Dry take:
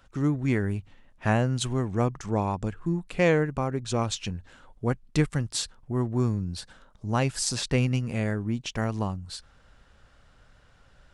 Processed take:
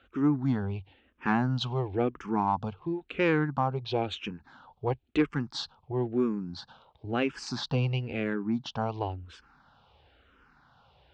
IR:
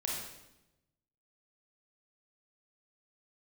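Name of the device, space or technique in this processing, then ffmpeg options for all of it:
barber-pole phaser into a guitar amplifier: -filter_complex "[0:a]asplit=2[link_01][link_02];[link_02]afreqshift=-0.98[link_03];[link_01][link_03]amix=inputs=2:normalize=1,asoftclip=type=tanh:threshold=-16.5dB,highpass=85,equalizer=frequency=110:width_type=q:width=4:gain=-8,equalizer=frequency=180:width_type=q:width=4:gain=-7,equalizer=frequency=580:width_type=q:width=4:gain=-6,equalizer=frequency=840:width_type=q:width=4:gain=5,equalizer=frequency=1900:width_type=q:width=4:gain=-7,lowpass=frequency=4000:width=0.5412,lowpass=frequency=4000:width=1.3066,volume=4dB"

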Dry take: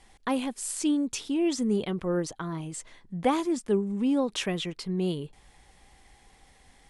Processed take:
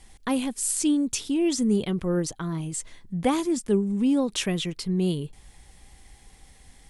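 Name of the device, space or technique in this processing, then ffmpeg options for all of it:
smiley-face EQ: -af "lowshelf=frequency=200:gain=7,equalizer=frequency=840:width_type=o:width=2:gain=-3,highshelf=frequency=6600:gain=9,volume=1.5dB"

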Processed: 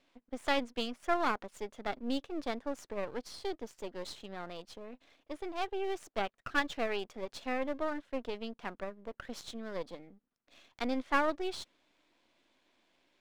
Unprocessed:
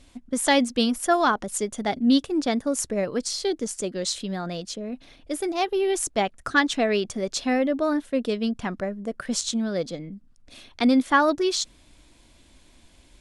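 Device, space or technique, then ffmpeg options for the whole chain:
crystal radio: -af "highpass=350,lowpass=3300,aeval=exprs='if(lt(val(0),0),0.251*val(0),val(0))':channel_layout=same,volume=-7dB"

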